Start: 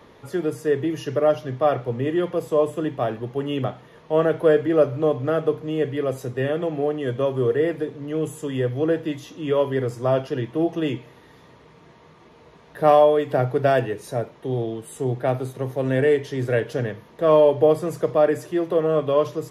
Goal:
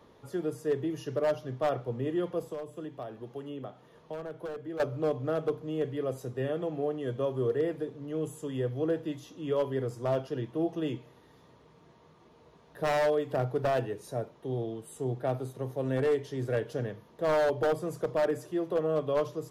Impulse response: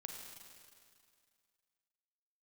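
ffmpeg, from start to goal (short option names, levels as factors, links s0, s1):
-filter_complex "[0:a]aeval=exprs='0.251*(abs(mod(val(0)/0.251+3,4)-2)-1)':c=same,asettb=1/sr,asplit=3[s0][s1][s2];[s0]atrim=end=2.424[s3];[s1]atrim=start=2.42:end=4.8,asetpts=PTS-STARTPTS,afade=t=in:d=0.004:c=qsin,afade=t=out:st=2.376:d=0.004:c=qsin,acrossover=split=180|1700[s4][s5][s6];[s4]acompressor=threshold=0.00562:ratio=4[s7];[s5]acompressor=threshold=0.0316:ratio=4[s8];[s6]acompressor=threshold=0.00398:ratio=4[s9];[s7][s8][s9]amix=inputs=3:normalize=0[s10];[s2]atrim=start=4.796[s11];[s3][s10]acrossfade=d=0.004:c1=hsin:c2=qsin[s12];[s12][s11]acrossfade=d=0.004:c1=qsin:c2=hsin,equalizer=f=2100:t=o:w=0.94:g=-5.5,volume=0.398"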